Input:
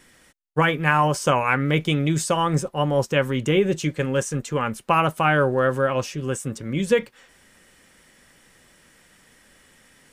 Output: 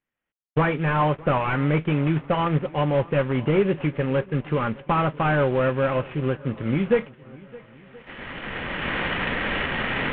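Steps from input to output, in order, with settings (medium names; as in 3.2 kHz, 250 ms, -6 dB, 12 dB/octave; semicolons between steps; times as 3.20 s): CVSD coder 16 kbps; recorder AGC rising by 15 dB/s; gate -38 dBFS, range -12 dB; spectral noise reduction 22 dB; on a send: shuffle delay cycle 1026 ms, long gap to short 1.5:1, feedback 34%, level -22 dB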